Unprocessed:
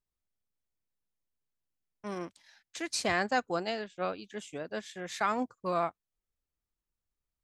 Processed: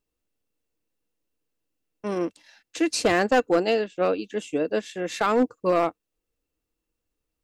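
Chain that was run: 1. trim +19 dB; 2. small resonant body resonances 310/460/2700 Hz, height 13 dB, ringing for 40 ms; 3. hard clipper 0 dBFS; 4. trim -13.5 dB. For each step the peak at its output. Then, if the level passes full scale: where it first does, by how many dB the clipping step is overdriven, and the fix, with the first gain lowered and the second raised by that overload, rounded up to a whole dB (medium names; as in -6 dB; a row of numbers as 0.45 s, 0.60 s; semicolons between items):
+3.5 dBFS, +6.0 dBFS, 0.0 dBFS, -13.5 dBFS; step 1, 6.0 dB; step 1 +13 dB, step 4 -7.5 dB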